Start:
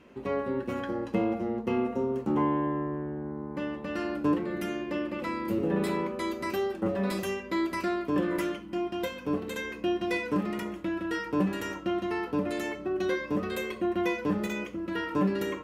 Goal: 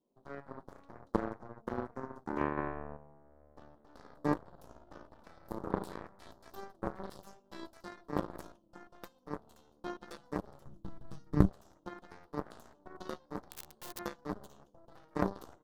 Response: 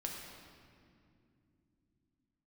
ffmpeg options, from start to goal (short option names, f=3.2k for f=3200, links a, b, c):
-filter_complex "[0:a]highpass=140,asettb=1/sr,asplit=3[a][b][c];[a]atrim=end=13.464[d];[b]atrim=start=13.46:end=13.99,asetpts=PTS-STARTPTS,afade=t=in:d=0.004:c=qsin,afade=t=out:st=0.526:d=0.004:c=qsin,aeval=exprs='(mod(17.8*val(0)+1,2)-1)/17.8':c=same[e];[c]atrim=start=13.986[f];[d][e]acrossfade=d=0.004:c1=hsin:c2=qsin[g];[g][f]acrossfade=d=0.004:c1=qsin:c2=hsin,asuperstop=centerf=1900:order=8:qfactor=0.74,aeval=exprs='0.168*(cos(1*acos(clip(val(0)/0.168,-1,1)))-cos(1*PI/2))+0.0668*(cos(3*acos(clip(val(0)/0.168,-1,1)))-cos(3*PI/2))+0.00531*(cos(5*acos(clip(val(0)/0.168,-1,1)))-cos(5*PI/2))+0.00168*(cos(8*acos(clip(val(0)/0.168,-1,1)))-cos(8*PI/2))':c=same,asettb=1/sr,asplit=3[h][i][j];[h]atrim=end=2.574[k];[i]atrim=start=2.57:end=2.97,asetpts=PTS-STARTPTS,afade=t=in:d=0.004:c=qsin,afade=t=out:st=0.396:d=0.004:c=qsin,acontrast=75[l];[j]atrim=start=2.966[m];[k][l]acrossfade=d=0.004:c1=hsin:c2=qsin[n];[n][m]acrossfade=d=0.004:c1=qsin:c2=hsin,asplit=3[o][p][q];[o]afade=t=out:st=10.65:d=0.02[r];[p]asubboost=boost=6:cutoff=230,afade=t=in:st=10.65:d=0.02,afade=t=out:st=11.48:d=0.02[s];[q]afade=t=in:st=11.48:d=0.02[t];[r][s][t]amix=inputs=3:normalize=0,volume=3.5dB"